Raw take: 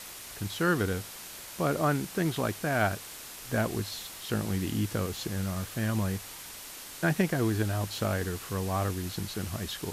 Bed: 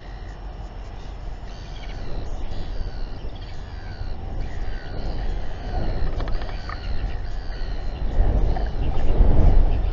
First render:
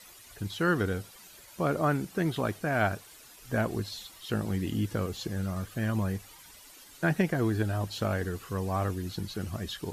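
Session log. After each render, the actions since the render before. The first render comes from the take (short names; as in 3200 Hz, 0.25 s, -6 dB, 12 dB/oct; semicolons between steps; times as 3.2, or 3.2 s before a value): denoiser 12 dB, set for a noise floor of -44 dBFS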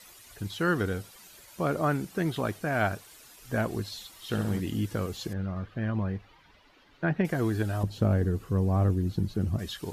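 4.12–4.6 flutter echo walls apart 11.3 m, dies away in 0.61 s; 5.33–7.25 air absorption 310 m; 7.83–9.59 tilt shelf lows +8.5 dB, about 640 Hz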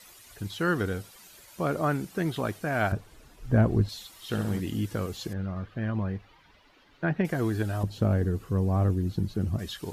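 2.92–3.89 tilt -3.5 dB/oct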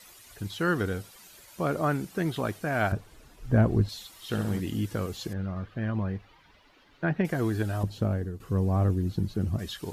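7.88–8.4 fade out, to -11.5 dB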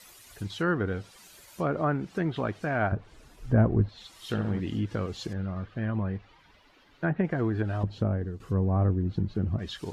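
treble ducked by the level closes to 1800 Hz, closed at -23 dBFS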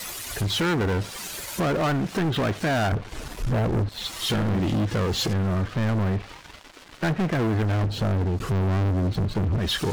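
compressor 2:1, threshold -34 dBFS, peak gain reduction 10 dB; sample leveller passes 5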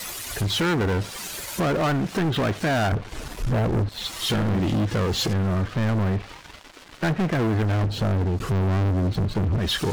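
gain +1 dB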